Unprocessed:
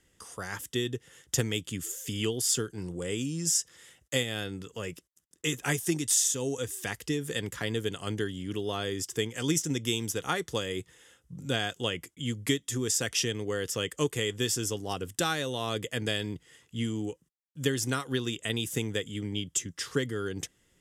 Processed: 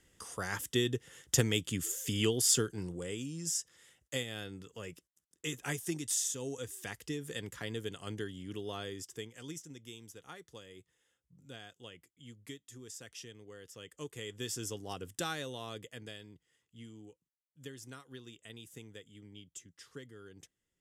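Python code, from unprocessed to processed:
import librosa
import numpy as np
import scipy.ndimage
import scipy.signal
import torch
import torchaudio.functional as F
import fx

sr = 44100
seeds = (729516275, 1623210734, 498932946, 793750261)

y = fx.gain(x, sr, db=fx.line((2.67, 0.0), (3.18, -8.0), (8.79, -8.0), (9.72, -19.5), (13.71, -19.5), (14.63, -8.0), (15.42, -8.0), (16.28, -19.0)))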